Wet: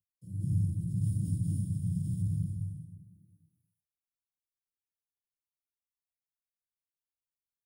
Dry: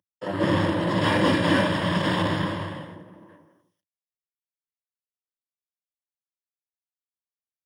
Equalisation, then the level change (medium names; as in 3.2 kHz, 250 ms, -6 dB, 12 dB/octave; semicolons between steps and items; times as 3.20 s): Chebyshev band-stop 140–9500 Hz, order 3; bass shelf 140 Hz +6.5 dB; -3.0 dB